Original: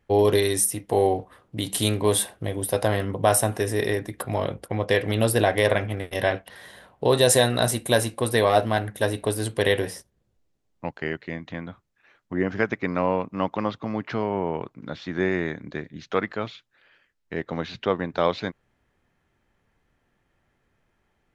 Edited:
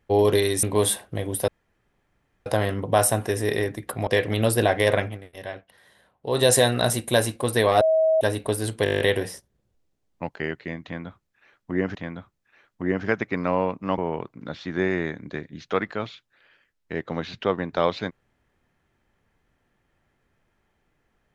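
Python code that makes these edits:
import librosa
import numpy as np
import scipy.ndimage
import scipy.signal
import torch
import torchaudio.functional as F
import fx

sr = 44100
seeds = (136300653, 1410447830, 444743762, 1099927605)

y = fx.edit(x, sr, fx.cut(start_s=0.63, length_s=1.29),
    fx.insert_room_tone(at_s=2.77, length_s=0.98),
    fx.cut(start_s=4.38, length_s=0.47),
    fx.fade_down_up(start_s=5.8, length_s=1.41, db=-12.0, fade_s=0.18),
    fx.bleep(start_s=8.59, length_s=0.4, hz=639.0, db=-16.0),
    fx.stutter(start_s=9.62, slice_s=0.02, count=9),
    fx.repeat(start_s=11.46, length_s=1.11, count=2),
    fx.cut(start_s=13.49, length_s=0.9), tone=tone)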